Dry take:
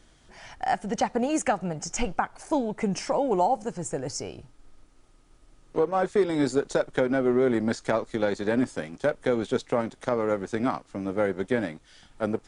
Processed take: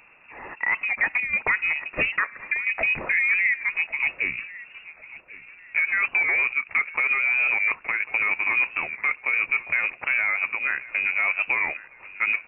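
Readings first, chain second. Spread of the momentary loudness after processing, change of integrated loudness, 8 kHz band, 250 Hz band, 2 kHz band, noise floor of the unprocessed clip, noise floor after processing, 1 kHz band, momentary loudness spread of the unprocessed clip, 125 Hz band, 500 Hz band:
14 LU, +5.0 dB, below −40 dB, below −20 dB, +17.0 dB, −58 dBFS, −50 dBFS, −5.0 dB, 9 LU, below −10 dB, −16.5 dB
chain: high-pass filter 100 Hz 6 dB per octave
square-wave tremolo 0.75 Hz, depth 65%, duty 90%
in parallel at +0.5 dB: speech leveller 2 s
on the sum: brickwall limiter −15.5 dBFS, peak gain reduction 10.5 dB
hard clipping −16.5 dBFS, distortion −32 dB
harmonic and percussive parts rebalanced percussive +3 dB
on a send: repeating echo 1,095 ms, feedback 34%, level −18.5 dB
on the sum: voice inversion scrambler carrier 2,700 Hz
wow of a warped record 45 rpm, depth 100 cents

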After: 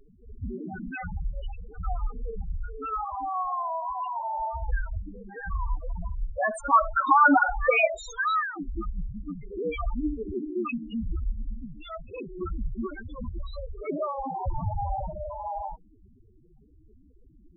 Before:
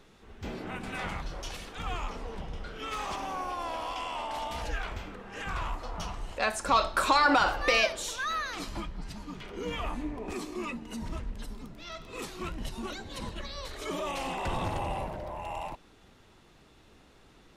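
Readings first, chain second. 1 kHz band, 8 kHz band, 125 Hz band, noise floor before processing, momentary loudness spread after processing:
+4.5 dB, −10.0 dB, +4.5 dB, −58 dBFS, 17 LU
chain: spectral peaks only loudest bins 4
level +8 dB

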